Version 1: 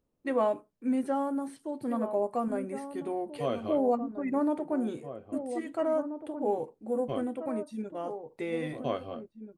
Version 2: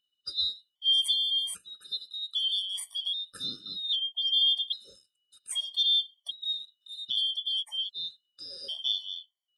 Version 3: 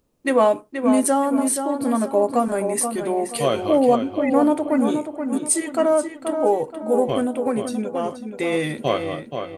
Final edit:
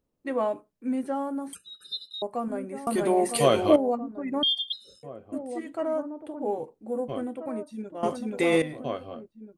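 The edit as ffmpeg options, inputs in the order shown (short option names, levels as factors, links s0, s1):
-filter_complex "[1:a]asplit=2[s0][s1];[2:a]asplit=2[s2][s3];[0:a]asplit=5[s4][s5][s6][s7][s8];[s4]atrim=end=1.532[s9];[s0]atrim=start=1.528:end=2.222[s10];[s5]atrim=start=2.218:end=2.872[s11];[s2]atrim=start=2.868:end=3.762[s12];[s6]atrim=start=3.758:end=4.432[s13];[s1]atrim=start=4.428:end=5.032[s14];[s7]atrim=start=5.028:end=8.032[s15];[s3]atrim=start=8.028:end=8.622[s16];[s8]atrim=start=8.618[s17];[s9][s10]acrossfade=d=0.004:c1=hsin:c2=hsin[s18];[s18][s11]acrossfade=d=0.004:c1=hsin:c2=hsin[s19];[s19][s12]acrossfade=d=0.004:c1=hsin:c2=hsin[s20];[s20][s13]acrossfade=d=0.004:c1=hsin:c2=hsin[s21];[s21][s14]acrossfade=d=0.004:c1=hsin:c2=hsin[s22];[s22][s15]acrossfade=d=0.004:c1=hsin:c2=hsin[s23];[s23][s16]acrossfade=d=0.004:c1=hsin:c2=hsin[s24];[s24][s17]acrossfade=d=0.004:c1=hsin:c2=hsin"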